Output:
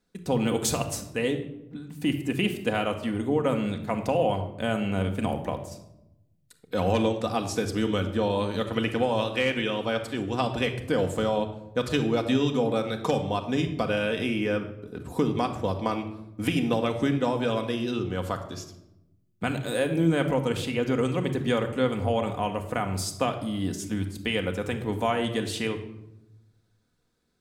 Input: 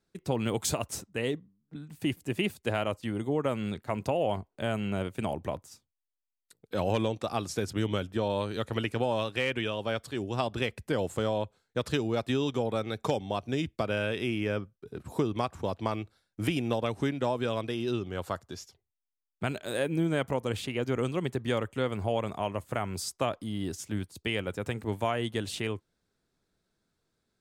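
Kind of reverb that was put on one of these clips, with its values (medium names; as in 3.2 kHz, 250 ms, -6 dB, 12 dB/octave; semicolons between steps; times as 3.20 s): simulated room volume 3000 m³, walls furnished, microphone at 1.9 m; trim +2.5 dB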